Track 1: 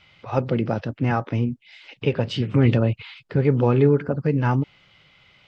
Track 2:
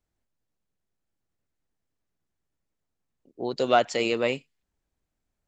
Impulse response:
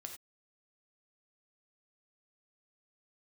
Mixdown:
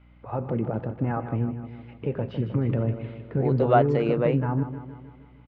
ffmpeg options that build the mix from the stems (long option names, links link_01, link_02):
-filter_complex "[0:a]alimiter=limit=-13dB:level=0:latency=1:release=36,volume=-5.5dB,asplit=3[link_01][link_02][link_03];[link_02]volume=-4.5dB[link_04];[link_03]volume=-8dB[link_05];[1:a]aeval=exprs='val(0)+0.002*(sin(2*PI*60*n/s)+sin(2*PI*2*60*n/s)/2+sin(2*PI*3*60*n/s)/3+sin(2*PI*4*60*n/s)/4+sin(2*PI*5*60*n/s)/5)':channel_layout=same,volume=1.5dB[link_06];[2:a]atrim=start_sample=2205[link_07];[link_04][link_07]afir=irnorm=-1:irlink=0[link_08];[link_05]aecho=0:1:155|310|465|620|775|930|1085|1240:1|0.56|0.314|0.176|0.0983|0.0551|0.0308|0.0173[link_09];[link_01][link_06][link_08][link_09]amix=inputs=4:normalize=0,lowpass=1300"